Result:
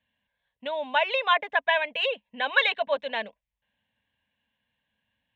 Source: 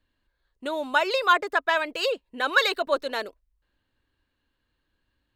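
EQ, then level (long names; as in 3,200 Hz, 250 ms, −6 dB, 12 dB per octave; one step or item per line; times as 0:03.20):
loudspeaker in its box 120–4,600 Hz, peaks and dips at 210 Hz +9 dB, 1,300 Hz +3 dB, 3,400 Hz +5 dB
parametric band 2,700 Hz +3.5 dB 2.3 octaves
phaser with its sweep stopped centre 1,300 Hz, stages 6
0.0 dB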